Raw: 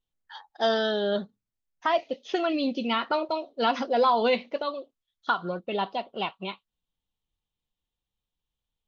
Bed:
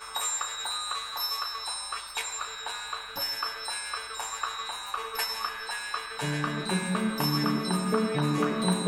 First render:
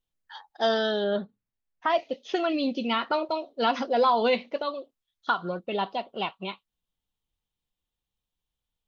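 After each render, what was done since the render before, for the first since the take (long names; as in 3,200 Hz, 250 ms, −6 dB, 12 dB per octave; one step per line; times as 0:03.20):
0:01.04–0:01.90: low-pass filter 3,000 Hz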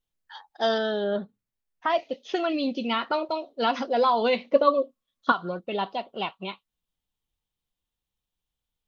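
0:00.78–0:01.22: high-shelf EQ 4,200 Hz −11 dB
0:04.52–0:05.32: hollow resonant body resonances 250/530/1,100 Hz, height 15 dB, ringing for 40 ms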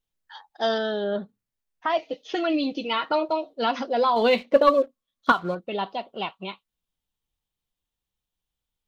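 0:01.96–0:03.54: comb filter 6.4 ms
0:04.16–0:05.55: leveller curve on the samples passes 1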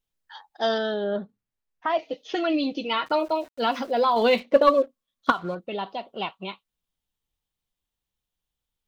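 0:00.94–0:01.99: high-shelf EQ 4,400 Hz −9.5 dB
0:03.06–0:04.40: centre clipping without the shift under −46 dBFS
0:05.30–0:06.04: downward compressor 1.5 to 1, threshold −29 dBFS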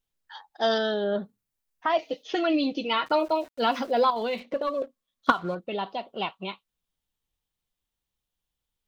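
0:00.71–0:02.23: high-shelf EQ 5,600 Hz +9.5 dB
0:04.10–0:04.82: downward compressor 2.5 to 1, threshold −30 dBFS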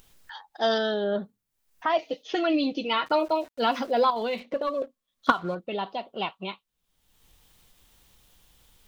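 upward compression, threshold −38 dBFS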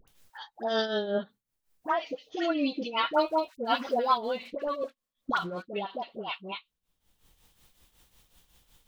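all-pass dispersion highs, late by 78 ms, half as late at 1,000 Hz
shaped tremolo triangle 5.4 Hz, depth 70%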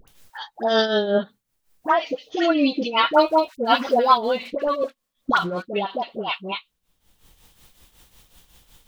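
level +9 dB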